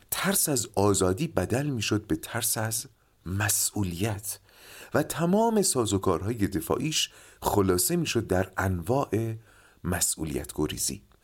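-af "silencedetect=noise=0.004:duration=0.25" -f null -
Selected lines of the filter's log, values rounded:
silence_start: 2.87
silence_end: 3.26 | silence_duration: 0.38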